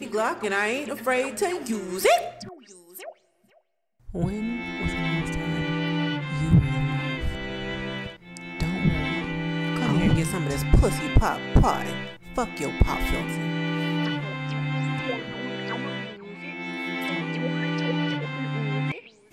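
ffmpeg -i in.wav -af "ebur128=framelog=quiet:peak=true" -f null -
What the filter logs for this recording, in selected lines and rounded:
Integrated loudness:
  I:         -26.2 LUFS
  Threshold: -36.7 LUFS
Loudness range:
  LRA:         5.7 LU
  Threshold: -46.8 LUFS
  LRA low:   -29.7 LUFS
  LRA high:  -24.0 LUFS
True peak:
  Peak:       -5.7 dBFS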